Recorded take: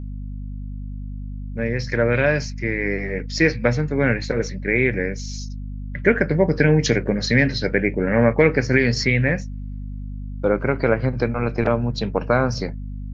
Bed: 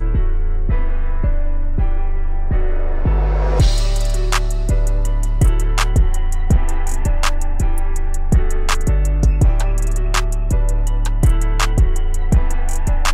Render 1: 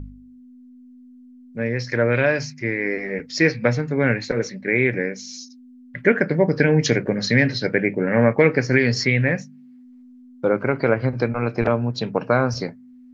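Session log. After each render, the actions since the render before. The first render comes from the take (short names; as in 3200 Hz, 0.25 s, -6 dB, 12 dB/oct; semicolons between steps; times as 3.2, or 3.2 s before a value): de-hum 50 Hz, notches 4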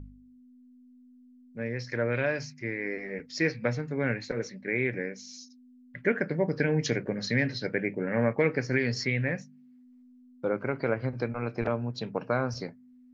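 gain -9.5 dB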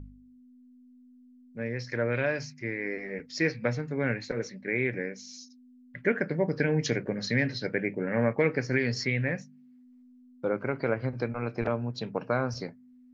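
nothing audible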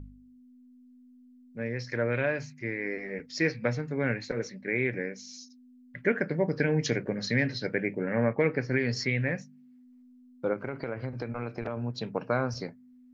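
2.15–2.6 bell 5200 Hz -11 dB 0.44 oct; 8.13–8.89 air absorption 150 m; 10.53–11.77 compressor, threshold -29 dBFS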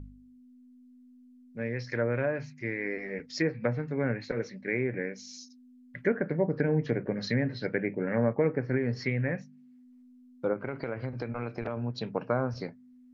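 treble ducked by the level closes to 1200 Hz, closed at -23 dBFS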